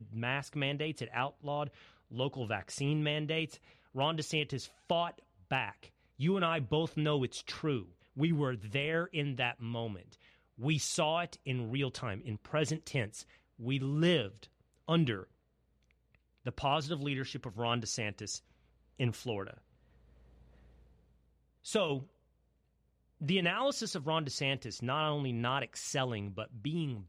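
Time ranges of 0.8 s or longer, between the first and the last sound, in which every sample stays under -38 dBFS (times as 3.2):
15.23–16.46
19.5–21.67
22.01–23.22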